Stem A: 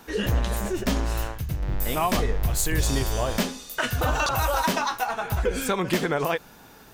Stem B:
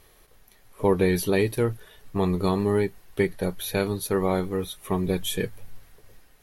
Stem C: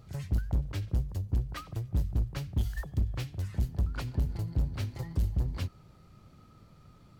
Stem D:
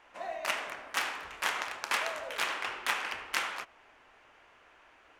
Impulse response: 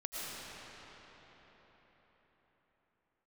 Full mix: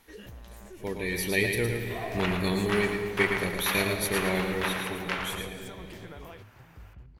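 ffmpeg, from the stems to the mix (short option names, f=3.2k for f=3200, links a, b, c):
-filter_complex "[0:a]acompressor=threshold=-27dB:ratio=6,volume=-15.5dB[a];[1:a]highshelf=f=1.6k:t=q:w=3:g=7,volume=-8dB,afade=t=in:st=1.02:d=0.44:silence=0.421697,afade=t=out:st=4.57:d=0.59:silence=0.316228,asplit=3[b][c][d];[c]volume=-6dB[e];[d]volume=-3.5dB[f];[2:a]highshelf=f=8.3k:g=-9,alimiter=level_in=5.5dB:limit=-24dB:level=0:latency=1:release=248,volume=-5.5dB,adelay=1600,volume=-13dB[g];[3:a]lowpass=3.5k,adelay=1750,volume=0dB,asplit=2[h][i];[i]volume=-8.5dB[j];[4:a]atrim=start_sample=2205[k];[e][k]afir=irnorm=-1:irlink=0[l];[f][j]amix=inputs=2:normalize=0,aecho=0:1:112|224|336|448:1|0.25|0.0625|0.0156[m];[a][b][g][h][l][m]amix=inputs=6:normalize=0"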